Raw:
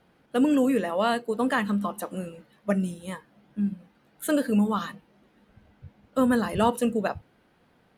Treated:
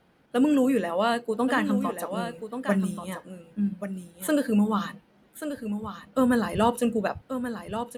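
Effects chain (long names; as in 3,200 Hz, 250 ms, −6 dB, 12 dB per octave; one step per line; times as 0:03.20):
0:02.31–0:02.98: high-shelf EQ 12,000 Hz +9.5 dB
single-tap delay 1,133 ms −9 dB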